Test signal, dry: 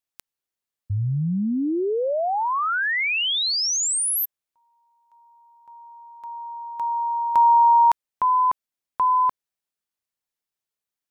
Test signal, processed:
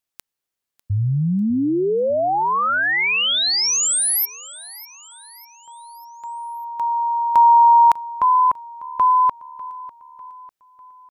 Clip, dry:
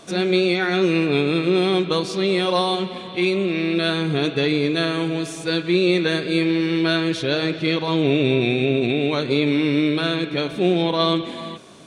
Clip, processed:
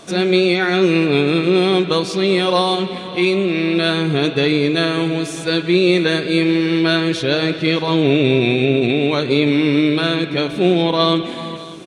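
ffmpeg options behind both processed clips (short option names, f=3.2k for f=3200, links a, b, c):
-af "aecho=1:1:598|1196|1794|2392:0.112|0.055|0.0269|0.0132,volume=4dB"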